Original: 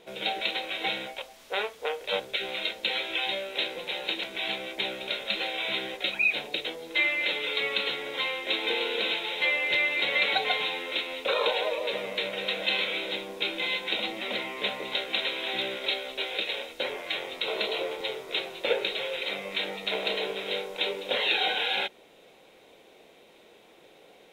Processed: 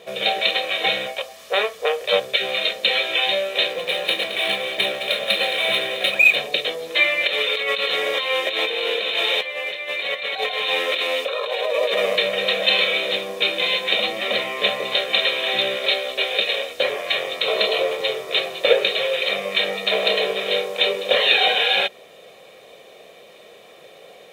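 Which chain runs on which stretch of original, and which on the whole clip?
3.72–6.36 s: median filter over 5 samples + echo whose repeats swap between lows and highs 109 ms, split 910 Hz, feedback 68%, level -7.5 dB
7.27–12.16 s: high-pass 220 Hz + compressor with a negative ratio -33 dBFS
whole clip: high-pass 99 Hz 12 dB/octave; bass shelf 130 Hz -3 dB; comb 1.7 ms, depth 60%; trim +8.5 dB

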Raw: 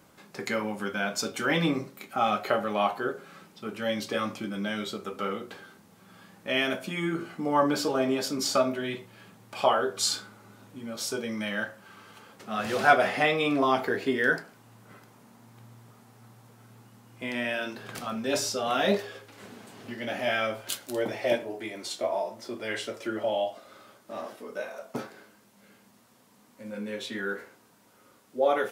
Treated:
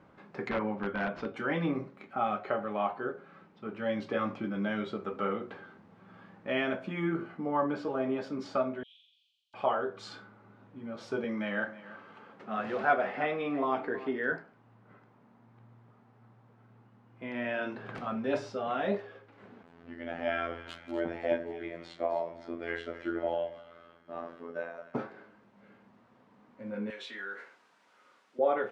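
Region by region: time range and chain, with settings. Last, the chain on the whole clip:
0.49–1.34 s: CVSD coder 64 kbps + integer overflow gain 20.5 dB + distance through air 190 m
8.83–9.54 s: steep high-pass 3 kHz 72 dB/octave + flutter echo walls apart 7.4 m, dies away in 1.1 s
11.24–14.32 s: high-pass 160 Hz + delay 322 ms -17 dB
19.63–24.94 s: robot voice 84.6 Hz + two-band feedback delay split 1.7 kHz, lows 83 ms, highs 259 ms, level -13 dB
26.90–28.39 s: compression 2:1, threshold -37 dBFS + high-pass 1.1 kHz 6 dB/octave + peaking EQ 8.9 kHz +13 dB 2.9 oct
whole clip: low-pass 1.9 kHz 12 dB/octave; gain riding within 3 dB 0.5 s; trim -3 dB

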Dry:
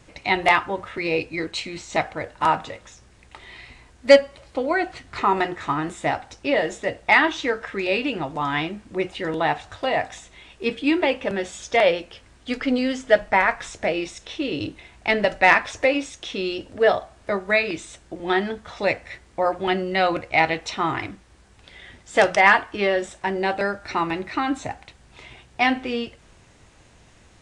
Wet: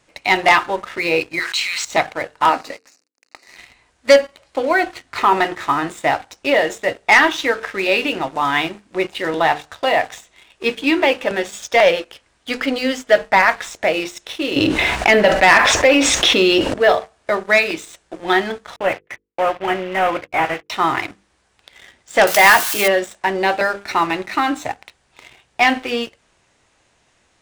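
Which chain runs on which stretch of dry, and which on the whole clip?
1.39–1.85 s: high-pass 1.1 kHz 24 dB/octave + level flattener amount 70%
2.49–3.57 s: small samples zeroed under -43.5 dBFS + Butterworth band-stop 3.3 kHz, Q 2.7 + cabinet simulation 270–8500 Hz, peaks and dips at 270 Hz +9 dB, 930 Hz -6 dB, 1.5 kHz -4 dB, 4.5 kHz +7 dB
14.56–16.74 s: treble shelf 5 kHz -9 dB + level flattener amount 70%
18.76–20.70 s: CVSD coder 16 kbps + gate -40 dBFS, range -40 dB + dynamic bell 220 Hz, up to -4 dB, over -36 dBFS, Q 0.71
22.27–22.88 s: zero-crossing glitches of -17.5 dBFS + doubling 14 ms -11 dB
whole clip: bass shelf 220 Hz -11.5 dB; hum notches 50/100/150/200/250/300/350/400/450/500 Hz; waveshaping leveller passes 2

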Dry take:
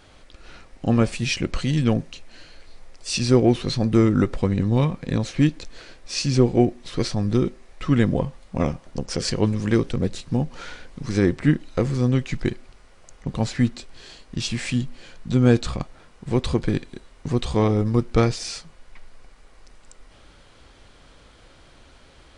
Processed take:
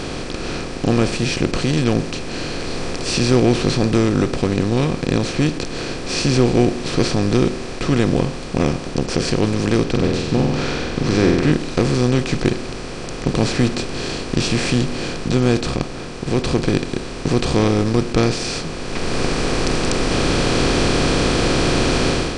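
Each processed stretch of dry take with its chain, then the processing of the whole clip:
9.84–11.52 s: low-pass 4.3 kHz + flutter echo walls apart 8 m, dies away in 0.53 s
whole clip: spectral levelling over time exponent 0.4; level rider; trim -1 dB

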